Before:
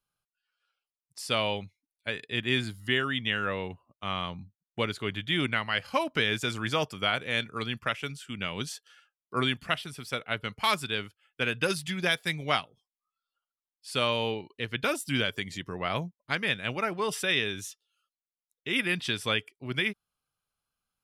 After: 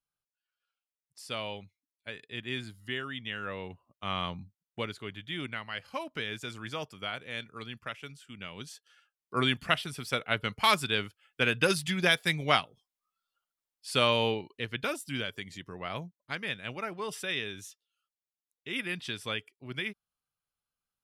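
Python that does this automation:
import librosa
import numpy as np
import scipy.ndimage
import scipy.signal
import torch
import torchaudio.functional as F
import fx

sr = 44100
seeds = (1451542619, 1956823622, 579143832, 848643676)

y = fx.gain(x, sr, db=fx.line((3.3, -8.5), (4.28, 0.5), (5.14, -9.0), (8.64, -9.0), (9.61, 2.0), (14.26, 2.0), (15.1, -6.5)))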